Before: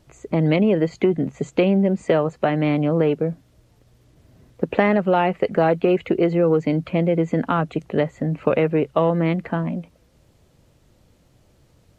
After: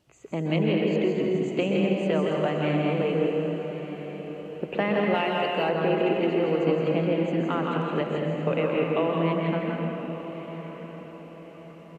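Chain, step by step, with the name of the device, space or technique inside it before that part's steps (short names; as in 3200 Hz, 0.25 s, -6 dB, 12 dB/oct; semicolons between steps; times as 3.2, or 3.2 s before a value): stadium PA (HPF 150 Hz 6 dB/oct; bell 2800 Hz +7.5 dB 0.27 oct; loudspeakers at several distances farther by 57 m -5 dB, 84 m -9 dB; reverb RT60 1.9 s, pre-delay 0.12 s, DRR 1 dB); 5.14–5.69 tilt +2 dB/oct; diffused feedback echo 1.135 s, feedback 42%, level -12 dB; gain -8.5 dB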